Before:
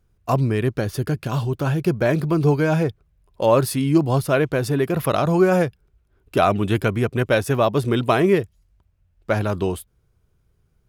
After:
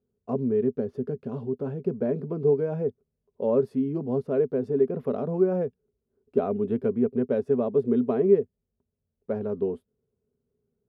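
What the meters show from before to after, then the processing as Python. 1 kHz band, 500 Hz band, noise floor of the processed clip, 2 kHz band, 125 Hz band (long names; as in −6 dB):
−16.0 dB, −3.5 dB, −82 dBFS, below −20 dB, −13.5 dB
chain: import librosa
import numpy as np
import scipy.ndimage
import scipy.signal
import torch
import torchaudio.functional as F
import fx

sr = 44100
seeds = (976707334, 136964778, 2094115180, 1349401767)

y = fx.double_bandpass(x, sr, hz=320.0, octaves=0.75)
y = y * librosa.db_to_amplitude(2.5)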